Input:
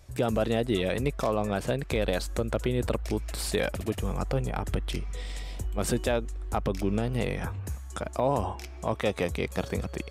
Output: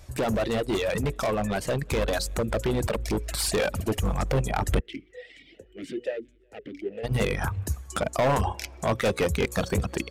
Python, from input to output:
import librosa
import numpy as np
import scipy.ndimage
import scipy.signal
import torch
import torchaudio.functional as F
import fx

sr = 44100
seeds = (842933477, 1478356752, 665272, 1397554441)

y = fx.hum_notches(x, sr, base_hz=60, count=9)
y = fx.echo_feedback(y, sr, ms=181, feedback_pct=55, wet_db=-22.5)
y = fx.dereverb_blind(y, sr, rt60_s=1.2)
y = np.clip(y, -10.0 ** (-28.0 / 20.0), 10.0 ** (-28.0 / 20.0))
y = fx.rider(y, sr, range_db=10, speed_s=2.0)
y = fx.vowel_sweep(y, sr, vowels='e-i', hz=2.3, at=(4.79, 7.03), fade=0.02)
y = y * librosa.db_to_amplitude(7.5)